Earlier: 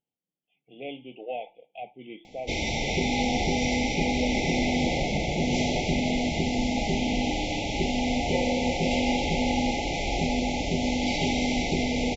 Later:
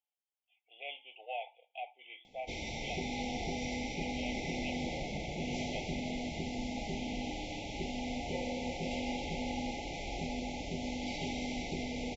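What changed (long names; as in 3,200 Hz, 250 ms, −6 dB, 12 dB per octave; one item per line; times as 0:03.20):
speech: add high-pass filter 750 Hz 24 dB per octave
background −12.0 dB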